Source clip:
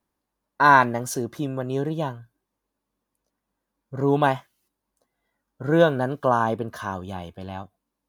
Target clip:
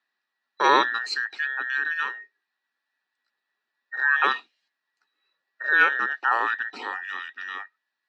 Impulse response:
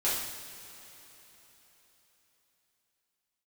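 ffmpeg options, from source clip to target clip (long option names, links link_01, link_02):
-af "afftfilt=real='real(if(between(b,1,1012),(2*floor((b-1)/92)+1)*92-b,b),0)':imag='imag(if(between(b,1,1012),(2*floor((b-1)/92)+1)*92-b,b),0)*if(between(b,1,1012),-1,1)':win_size=2048:overlap=0.75,highpass=frequency=220:width=0.5412,highpass=frequency=220:width=1.3066,equalizer=frequency=340:width_type=q:width=4:gain=-4,equalizer=frequency=490:width_type=q:width=4:gain=-7,equalizer=frequency=1000:width_type=q:width=4:gain=-5,equalizer=frequency=1500:width_type=q:width=4:gain=-3,equalizer=frequency=2500:width_type=q:width=4:gain=9,equalizer=frequency=4100:width_type=q:width=4:gain=8,lowpass=frequency=5400:width=0.5412,lowpass=frequency=5400:width=1.3066"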